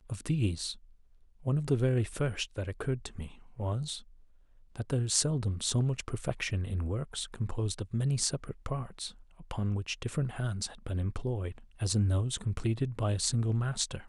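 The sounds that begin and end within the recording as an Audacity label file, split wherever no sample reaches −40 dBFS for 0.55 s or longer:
1.460000	3.990000	sound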